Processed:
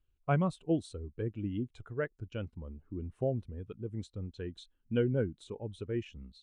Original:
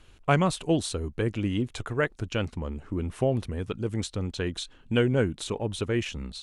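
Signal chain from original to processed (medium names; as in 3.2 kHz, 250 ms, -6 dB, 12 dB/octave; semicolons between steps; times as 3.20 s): spectral contrast expander 1.5:1; trim -9 dB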